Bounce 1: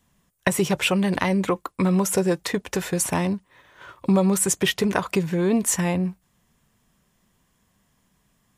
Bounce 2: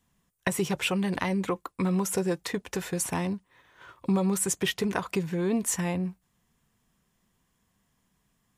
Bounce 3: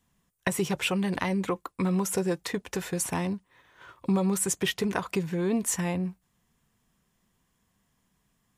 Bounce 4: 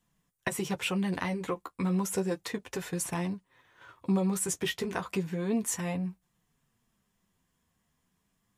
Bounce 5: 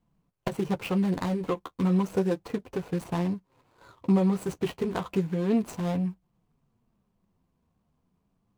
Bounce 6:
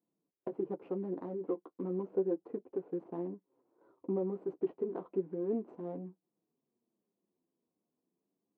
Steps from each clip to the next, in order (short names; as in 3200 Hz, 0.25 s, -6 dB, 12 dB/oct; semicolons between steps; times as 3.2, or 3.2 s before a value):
notch 590 Hz, Q 12; gain -6 dB
nothing audible
flange 0.32 Hz, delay 5.6 ms, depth 7.7 ms, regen -27%
median filter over 25 samples; gain +5 dB
ladder band-pass 390 Hz, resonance 50%; gain +2.5 dB